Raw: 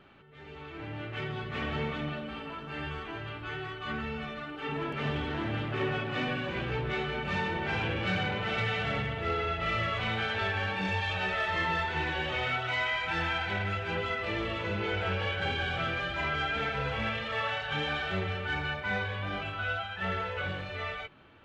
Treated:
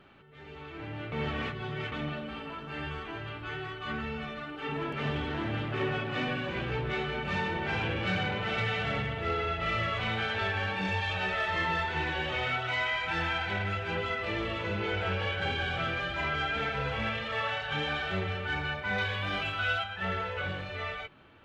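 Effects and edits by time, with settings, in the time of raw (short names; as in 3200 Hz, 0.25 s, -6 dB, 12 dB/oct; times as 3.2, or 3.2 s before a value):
1.12–1.92 reverse
18.98–19.84 high shelf 2100 Hz +9.5 dB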